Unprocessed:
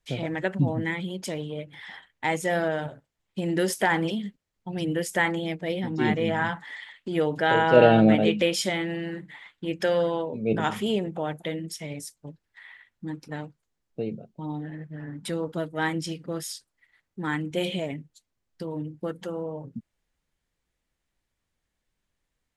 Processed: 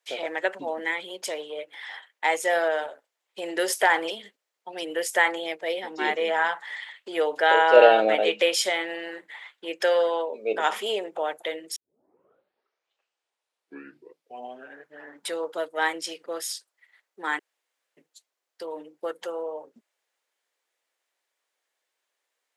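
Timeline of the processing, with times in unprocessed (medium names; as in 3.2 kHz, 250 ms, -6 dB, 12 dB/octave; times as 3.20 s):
11.76 s: tape start 3.28 s
17.39–17.97 s: room tone
whole clip: high-pass 450 Hz 24 dB/octave; trim +3.5 dB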